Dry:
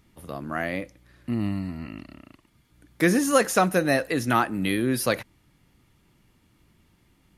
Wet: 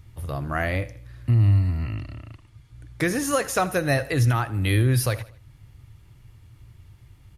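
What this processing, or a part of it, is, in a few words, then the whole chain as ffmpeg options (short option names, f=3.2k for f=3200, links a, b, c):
car stereo with a boomy subwoofer: -filter_complex "[0:a]lowshelf=f=150:t=q:w=3:g=10,alimiter=limit=-14.5dB:level=0:latency=1:release=414,asettb=1/sr,asplit=3[a][b][c];[a]atrim=end=1.944[d];[b]atrim=start=1.94:end=3.05,asetpts=PTS-STARTPTS,afade=t=in:d=0.004:c=qsin,afade=t=out:st=1.106:d=0.004:c=qsin,lowpass=10k[e];[c]atrim=start=3.046[f];[d][e]acrossfade=d=0.004:c1=hsin:c2=qsin[g];[g][f]acrossfade=d=0.004:c1=qsin:c2=hsin,aecho=1:1:79|158|237:0.133|0.0533|0.0213,volume=3dB"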